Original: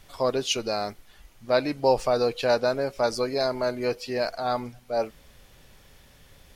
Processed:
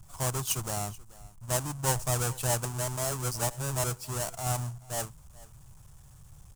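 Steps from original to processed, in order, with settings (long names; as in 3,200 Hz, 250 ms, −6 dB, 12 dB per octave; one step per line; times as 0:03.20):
each half-wave held at its own peak
octave-band graphic EQ 125/250/500/1,000/2,000/4,000/8,000 Hz +11/−11/−12/+3/−11/−9/+9 dB
single-tap delay 432 ms −21 dB
0:01.52–0:02.09: expander for the loud parts 1.5 to 1, over −22 dBFS
0:02.65–0:03.84: reverse
level −5 dB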